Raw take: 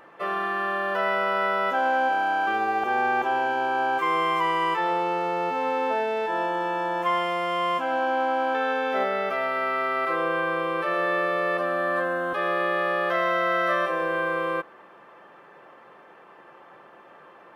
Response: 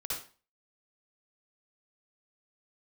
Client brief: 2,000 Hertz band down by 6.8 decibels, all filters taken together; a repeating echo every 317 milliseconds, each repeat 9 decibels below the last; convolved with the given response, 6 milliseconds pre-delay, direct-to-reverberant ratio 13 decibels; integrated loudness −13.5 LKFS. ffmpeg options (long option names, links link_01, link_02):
-filter_complex "[0:a]equalizer=frequency=2000:width_type=o:gain=-9,aecho=1:1:317|634|951|1268:0.355|0.124|0.0435|0.0152,asplit=2[link_01][link_02];[1:a]atrim=start_sample=2205,adelay=6[link_03];[link_02][link_03]afir=irnorm=-1:irlink=0,volume=-15.5dB[link_04];[link_01][link_04]amix=inputs=2:normalize=0,volume=12dB"